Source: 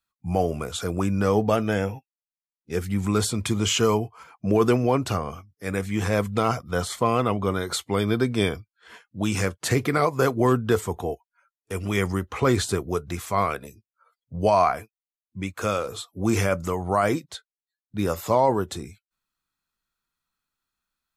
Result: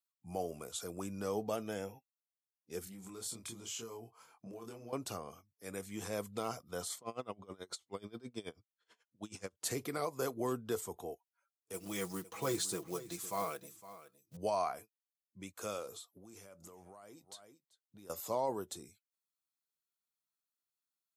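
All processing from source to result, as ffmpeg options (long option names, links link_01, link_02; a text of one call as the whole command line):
ffmpeg -i in.wav -filter_complex "[0:a]asettb=1/sr,asplit=3[link_01][link_02][link_03];[link_01]atrim=end=2.844[link_04];[link_02]atrim=start=2.84:end=4.93,asetpts=PTS-STARTPTS,afade=type=in:duration=0.004:curve=qsin,afade=type=out:start_time=2.086:duration=0.004:curve=qsin,acompressor=threshold=-30dB:ratio=6:attack=3.2:release=140:knee=1:detection=peak,asplit=2[link_05][link_06];[link_06]adelay=26,volume=-2dB[link_07];[link_05][link_07]amix=inputs=2:normalize=0,atrim=end_sample=92169[link_08];[link_03]atrim=start=4.926[link_09];[link_04][link_08]acrossfade=duration=0.004:curve1=hsin:curve2=qsin[link_10];[link_10][link_09]acrossfade=duration=0.004:curve1=qsin:curve2=hsin,asettb=1/sr,asplit=3[link_11][link_12][link_13];[link_11]atrim=end=6.984[link_14];[link_12]atrim=start=6.98:end=9.57,asetpts=PTS-STARTPTS,afade=type=in:duration=0.004:curve=qsin,afade=type=out:start_time=2.586:duration=0.004:curve=qsin,lowpass=7300,aeval=exprs='val(0)*pow(10,-24*(0.5-0.5*cos(2*PI*9.3*n/s))/20)':channel_layout=same[link_15];[link_13]atrim=start=9.566[link_16];[link_14][link_15]acrossfade=duration=0.004:curve1=hsin:curve2=qsin[link_17];[link_17][link_16]acrossfade=duration=0.004:curve1=qsin:curve2=hsin,asettb=1/sr,asplit=3[link_18][link_19][link_20];[link_18]atrim=end=11.734[link_21];[link_19]atrim=start=11.73:end=14.37,asetpts=PTS-STARTPTS,afade=type=in:duration=0.004:curve=qsin,afade=type=out:start_time=2.636:duration=0.004:curve=qsin,aecho=1:1:6.1:0.71,atrim=end_sample=116424,acrusher=bits=5:mode=log:mix=0:aa=0.000001,aecho=1:1:510:0.168,atrim=end_sample=116424[link_22];[link_20]atrim=start=14.366[link_23];[link_21][link_22]acrossfade=duration=0.004:curve1=hsin:curve2=qsin[link_24];[link_24][link_23]acrossfade=duration=0.004:curve1=qsin:curve2=hsin,asettb=1/sr,asplit=3[link_25][link_26][link_27];[link_25]atrim=end=15.944[link_28];[link_26]atrim=start=15.94:end=18.1,asetpts=PTS-STARTPTS,afade=type=in:duration=0.004:curve=qsin,afade=type=out:start_time=2.156:duration=0.004:curve=qsin,aecho=1:1:386:0.0708,atrim=end_sample=95256,acompressor=threshold=-34dB:ratio=20:attack=3.2:release=140:knee=1:detection=peak[link_29];[link_27]atrim=start=18.096[link_30];[link_28][link_29]acrossfade=duration=0.004:curve1=hsin:curve2=qsin[link_31];[link_31][link_30]acrossfade=duration=0.004:curve1=qsin:curve2=hsin,highpass=frequency=870:poles=1,equalizer=frequency=1800:width_type=o:width=2.5:gain=-13.5,volume=-4.5dB" out.wav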